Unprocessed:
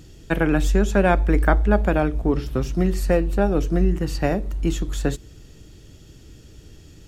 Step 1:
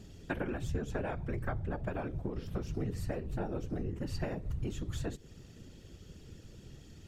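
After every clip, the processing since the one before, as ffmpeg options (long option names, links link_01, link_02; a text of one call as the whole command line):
ffmpeg -i in.wav -af "highshelf=frequency=7200:gain=-5.5,acompressor=threshold=-27dB:ratio=6,afftfilt=real='hypot(re,im)*cos(2*PI*random(0))':imag='hypot(re,im)*sin(2*PI*random(1))':win_size=512:overlap=0.75" out.wav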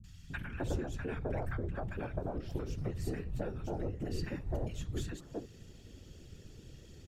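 ffmpeg -i in.wav -filter_complex "[0:a]acrossover=split=190|1100[link_01][link_02][link_03];[link_03]adelay=40[link_04];[link_02]adelay=300[link_05];[link_01][link_05][link_04]amix=inputs=3:normalize=0" out.wav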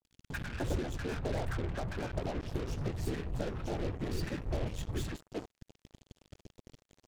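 ffmpeg -i in.wav -af "highshelf=frequency=7700:gain=-4.5,areverse,acompressor=mode=upward:threshold=-51dB:ratio=2.5,areverse,acrusher=bits=6:mix=0:aa=0.5,volume=1.5dB" out.wav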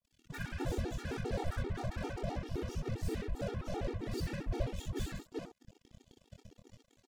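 ffmpeg -i in.wav -filter_complex "[0:a]asplit=2[link_01][link_02];[link_02]aecho=0:1:25|62:0.596|0.708[link_03];[link_01][link_03]amix=inputs=2:normalize=0,afftfilt=real='re*gt(sin(2*PI*7.6*pts/sr)*(1-2*mod(floor(b*sr/1024/240),2)),0)':imag='im*gt(sin(2*PI*7.6*pts/sr)*(1-2*mod(floor(b*sr/1024/240),2)),0)':win_size=1024:overlap=0.75,volume=-1dB" out.wav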